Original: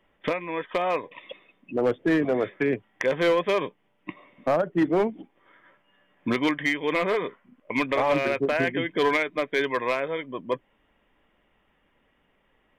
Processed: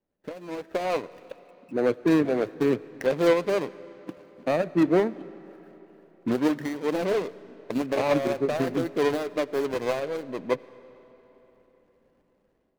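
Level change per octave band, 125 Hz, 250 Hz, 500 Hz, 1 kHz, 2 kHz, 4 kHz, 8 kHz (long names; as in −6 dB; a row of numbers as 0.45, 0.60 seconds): +1.0 dB, +1.5 dB, 0.0 dB, −4.0 dB, −7.5 dB, −4.5 dB, can't be measured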